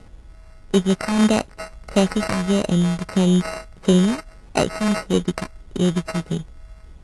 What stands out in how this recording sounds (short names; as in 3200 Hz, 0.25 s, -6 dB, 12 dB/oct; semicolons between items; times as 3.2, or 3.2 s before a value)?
a buzz of ramps at a fixed pitch in blocks of 16 samples; phasing stages 2, 1.6 Hz, lowest notch 410–3900 Hz; aliases and images of a low sample rate 3400 Hz, jitter 0%; AAC